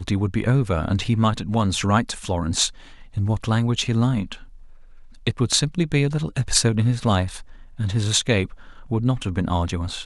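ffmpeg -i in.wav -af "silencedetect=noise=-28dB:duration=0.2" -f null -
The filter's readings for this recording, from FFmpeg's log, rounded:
silence_start: 2.68
silence_end: 3.17 | silence_duration: 0.49
silence_start: 4.34
silence_end: 5.27 | silence_duration: 0.92
silence_start: 7.39
silence_end: 7.80 | silence_duration: 0.41
silence_start: 8.53
silence_end: 8.91 | silence_duration: 0.38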